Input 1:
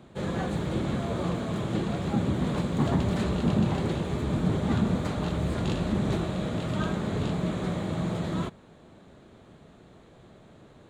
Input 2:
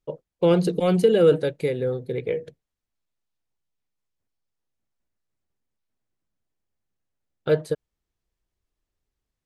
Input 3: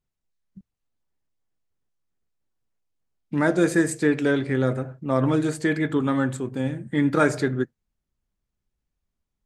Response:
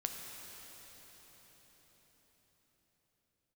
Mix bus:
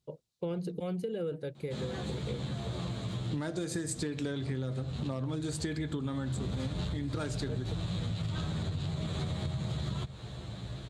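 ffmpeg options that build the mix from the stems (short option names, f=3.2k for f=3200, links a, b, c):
-filter_complex "[0:a]asubboost=boost=5.5:cutoff=97,aeval=exprs='0.299*sin(PI/2*2.51*val(0)/0.299)':c=same,asplit=2[a][b];[b]adelay=10.6,afreqshift=-0.26[c];[a][c]amix=inputs=2:normalize=1,adelay=1550,volume=-4dB,afade=t=in:st=6.07:d=0.52:silence=0.237137[d];[1:a]lowshelf=f=170:g=11.5,volume=-13dB[e];[2:a]equalizer=f=1.9k:t=o:w=1.3:g=-4.5,asoftclip=type=hard:threshold=-11.5dB,volume=0dB,asplit=2[f][g];[g]apad=whole_len=549195[h];[d][h]sidechaincompress=threshold=-21dB:ratio=8:attack=16:release=525[i];[i][f]amix=inputs=2:normalize=0,equalizer=f=125:t=o:w=1:g=8,equalizer=f=4k:t=o:w=1:g=11,equalizer=f=8k:t=o:w=1:g=5,acompressor=threshold=-19dB:ratio=6,volume=0dB[j];[e][j]amix=inputs=2:normalize=0,highpass=58,acompressor=threshold=-32dB:ratio=6"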